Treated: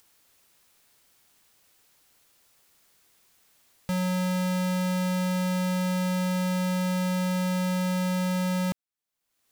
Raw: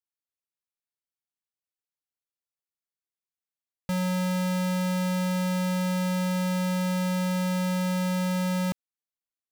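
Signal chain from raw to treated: upward compressor, threshold -39 dBFS

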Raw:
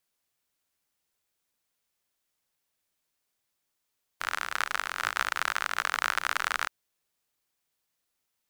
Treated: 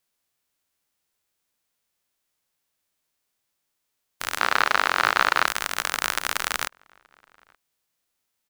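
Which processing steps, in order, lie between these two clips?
spectral whitening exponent 0.6; 4.39–5.47 overdrive pedal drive 24 dB, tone 2000 Hz, clips at -3 dBFS; outdoor echo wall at 150 m, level -27 dB; gain +2.5 dB

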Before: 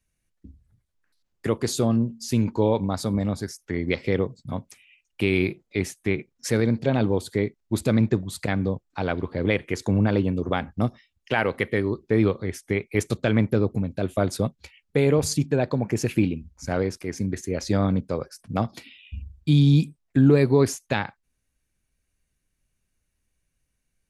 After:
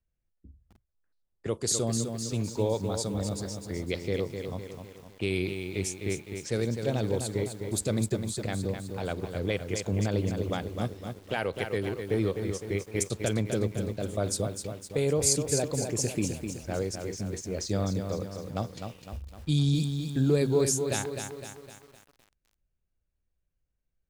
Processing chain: low-pass opened by the level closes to 1600 Hz, open at -19.5 dBFS; graphic EQ 125/250/1000/2000/8000 Hz -3/-7/-6/-7/+11 dB; lo-fi delay 0.255 s, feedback 55%, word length 8-bit, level -6.5 dB; gain -3 dB

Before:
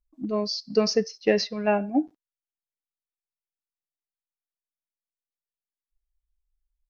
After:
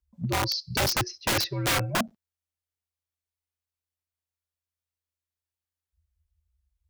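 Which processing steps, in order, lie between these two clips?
frequency shift -84 Hz; spectral delete 0.59–0.95, 410–2000 Hz; wrapped overs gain 20.5 dB; gain +1.5 dB

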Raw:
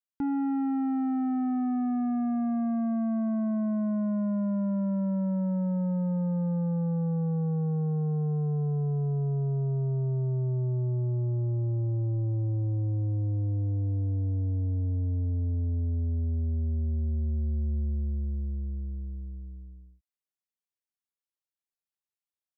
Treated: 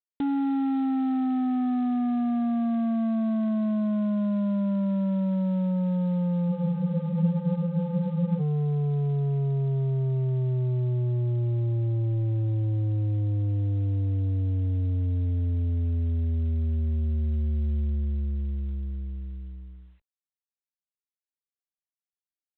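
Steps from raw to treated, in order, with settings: spectral freeze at 6.53, 1.87 s; gain +2.5 dB; G.726 24 kbps 8000 Hz

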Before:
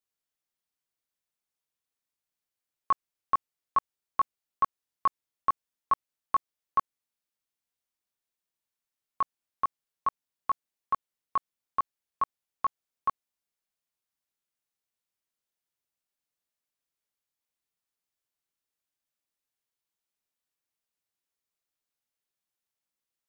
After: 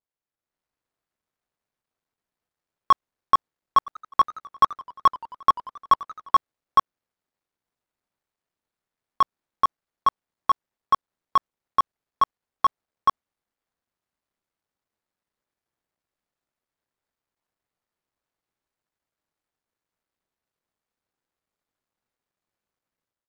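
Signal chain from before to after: median filter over 15 samples; AGC gain up to 9 dB; 3.77–6.35 warbling echo 88 ms, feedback 71%, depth 206 cents, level -20 dB

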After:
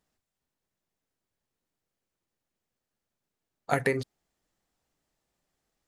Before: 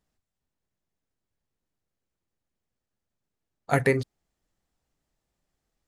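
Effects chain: compressor 5:1, threshold -23 dBFS, peak gain reduction 6.5 dB; low shelf 140 Hz -8.5 dB; gain +2 dB

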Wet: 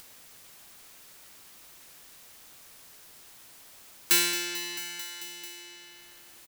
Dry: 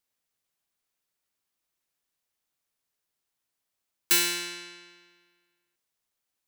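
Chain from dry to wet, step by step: feedback echo 0.221 s, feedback 58%, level -14.5 dB; upward compressor, threshold -27 dBFS

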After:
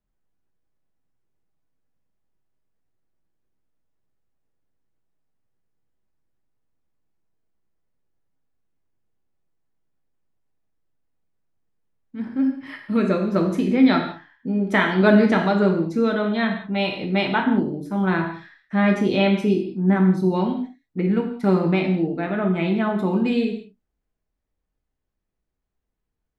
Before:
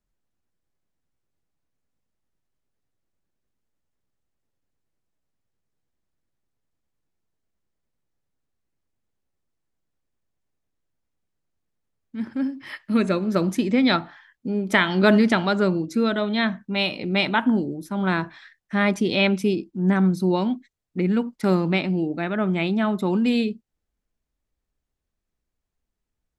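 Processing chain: high shelf 3100 Hz -11.5 dB; non-linear reverb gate 0.23 s falling, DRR 1.5 dB

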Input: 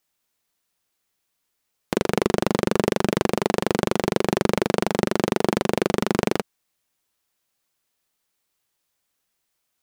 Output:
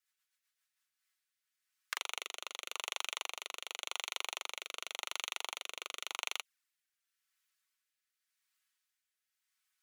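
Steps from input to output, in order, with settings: envelope flanger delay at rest 5.4 ms, full sweep at -20.5 dBFS; ladder high-pass 1200 Hz, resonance 35%; rotary speaker horn 8 Hz, later 0.9 Hz, at 0.35; gain +4.5 dB

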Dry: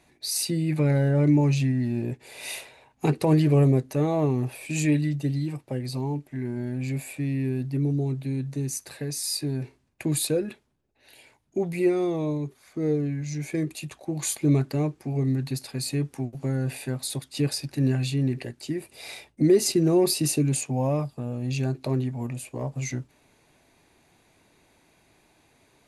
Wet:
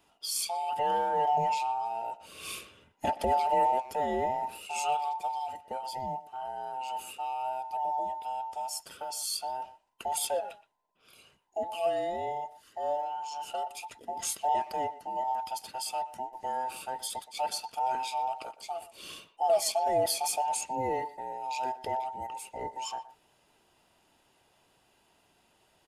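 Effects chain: band inversion scrambler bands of 1000 Hz; bell 780 Hz -3.5 dB 0.77 oct; speakerphone echo 0.12 s, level -16 dB; gain -4.5 dB

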